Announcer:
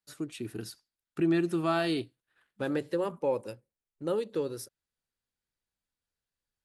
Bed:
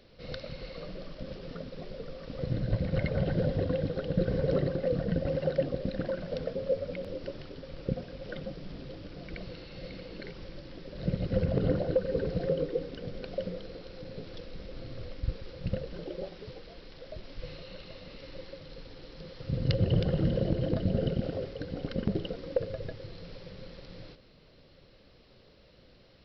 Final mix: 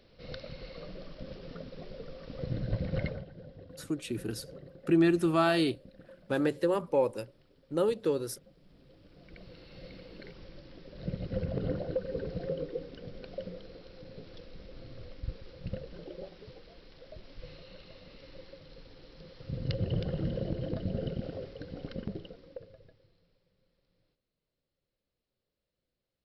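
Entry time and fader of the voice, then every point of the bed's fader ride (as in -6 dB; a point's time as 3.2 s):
3.70 s, +2.5 dB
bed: 3.08 s -3 dB
3.28 s -20.5 dB
8.49 s -20.5 dB
9.74 s -5.5 dB
21.91 s -5.5 dB
23.46 s -29 dB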